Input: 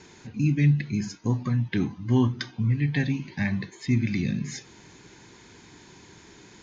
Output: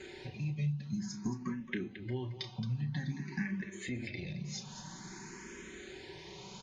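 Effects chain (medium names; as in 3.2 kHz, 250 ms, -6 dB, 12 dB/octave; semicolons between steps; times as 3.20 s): comb 5.3 ms, depth 59%; 3.91–4.35 s: transient shaper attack -12 dB, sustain +4 dB; compression 6:1, threshold -36 dBFS, peak gain reduction 19.5 dB; loudspeakers at several distances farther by 11 m -10 dB, 76 m -11 dB; barber-pole phaser +0.51 Hz; trim +3 dB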